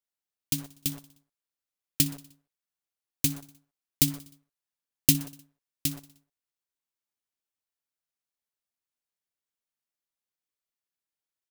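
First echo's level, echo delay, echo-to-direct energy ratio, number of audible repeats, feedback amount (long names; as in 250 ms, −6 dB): −20.0 dB, 61 ms, −18.0 dB, 4, 59%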